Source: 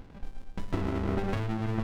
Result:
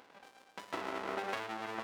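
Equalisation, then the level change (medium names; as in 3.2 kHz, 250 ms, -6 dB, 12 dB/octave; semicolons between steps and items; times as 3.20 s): high-pass 640 Hz 12 dB/octave; +1.0 dB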